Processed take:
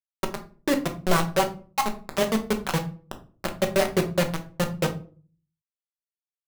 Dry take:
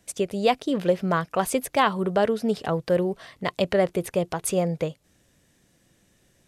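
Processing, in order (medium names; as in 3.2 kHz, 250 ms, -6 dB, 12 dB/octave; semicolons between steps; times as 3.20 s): random holes in the spectrogram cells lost 47%; low-pass 2.1 kHz; de-hum 198.7 Hz, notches 33; level-controlled noise filter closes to 1.3 kHz, open at -21.5 dBFS; 2.75–4.76 s: peaking EQ 1.6 kHz -12.5 dB 0.79 oct; bit crusher 4-bit; simulated room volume 260 m³, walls furnished, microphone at 1.1 m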